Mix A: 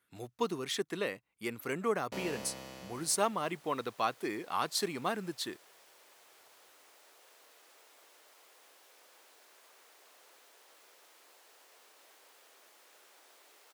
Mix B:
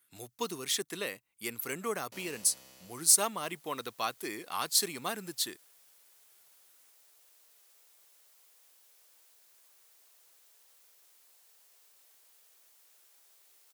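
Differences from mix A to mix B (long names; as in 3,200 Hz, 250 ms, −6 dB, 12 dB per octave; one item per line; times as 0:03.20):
speech +10.0 dB
master: add first-order pre-emphasis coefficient 0.8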